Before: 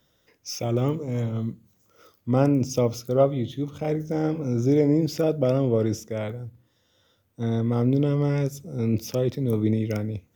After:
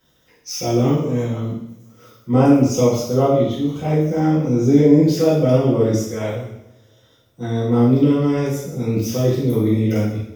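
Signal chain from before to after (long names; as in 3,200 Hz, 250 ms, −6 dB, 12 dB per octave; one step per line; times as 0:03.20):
coupled-rooms reverb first 0.74 s, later 2.6 s, from −28 dB, DRR −9.5 dB
level −2.5 dB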